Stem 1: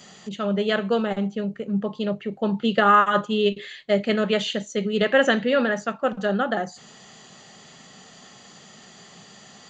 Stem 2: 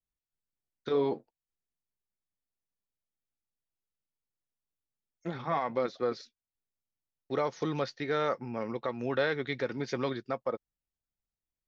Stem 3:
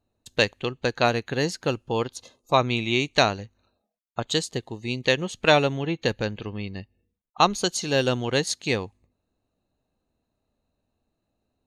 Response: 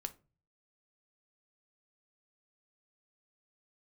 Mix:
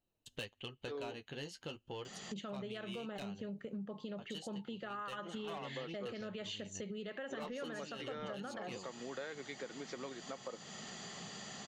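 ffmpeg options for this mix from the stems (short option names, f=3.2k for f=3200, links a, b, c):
-filter_complex "[0:a]acompressor=threshold=-28dB:ratio=2,adelay=2050,volume=1.5dB[a];[1:a]highpass=210,volume=-3dB[b];[2:a]flanger=delay=5.4:depth=8.4:regen=-25:speed=0.34:shape=triangular,equalizer=f=3k:w=6.3:g=14.5,asoftclip=type=tanh:threshold=-17.5dB,volume=-7.5dB[c];[a][c]amix=inputs=2:normalize=0,alimiter=limit=-23.5dB:level=0:latency=1:release=170,volume=0dB[d];[b][d]amix=inputs=2:normalize=0,acompressor=threshold=-45dB:ratio=3"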